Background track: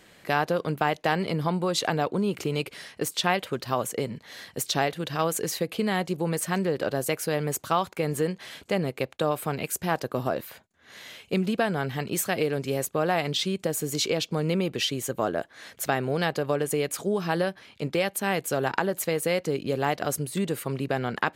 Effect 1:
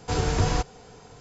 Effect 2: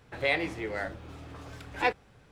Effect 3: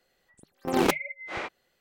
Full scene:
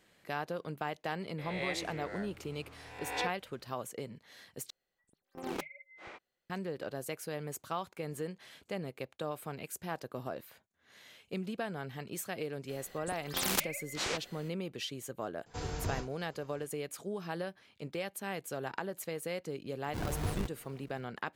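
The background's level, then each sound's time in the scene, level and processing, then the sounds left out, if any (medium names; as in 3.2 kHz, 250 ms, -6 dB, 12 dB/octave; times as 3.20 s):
background track -12.5 dB
1.38 s: add 2 -12.5 dB + reverse spectral sustain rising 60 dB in 1.01 s
4.70 s: replace with 3 -15.5 dB
12.69 s: add 3 -3 dB + spectrum-flattening compressor 4:1
15.46 s: add 1 -13.5 dB + endings held to a fixed fall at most 220 dB/s
19.85 s: add 1 -12 dB + decimation with a swept rate 40×, swing 160% 2 Hz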